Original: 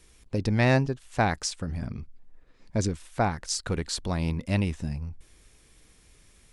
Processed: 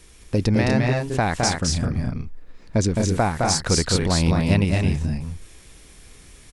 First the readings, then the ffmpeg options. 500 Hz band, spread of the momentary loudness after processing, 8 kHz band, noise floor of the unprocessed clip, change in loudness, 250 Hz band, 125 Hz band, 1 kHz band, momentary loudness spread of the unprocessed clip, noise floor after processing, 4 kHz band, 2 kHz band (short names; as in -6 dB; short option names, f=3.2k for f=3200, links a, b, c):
+6.5 dB, 10 LU, +9.5 dB, -59 dBFS, +7.0 dB, +7.5 dB, +7.0 dB, +5.5 dB, 12 LU, -48 dBFS, +9.0 dB, +4.5 dB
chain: -filter_complex "[0:a]alimiter=limit=-17.5dB:level=0:latency=1:release=355,asplit=2[a][b];[b]aecho=0:1:212.8|244.9:0.708|0.562[c];[a][c]amix=inputs=2:normalize=0,volume=8dB"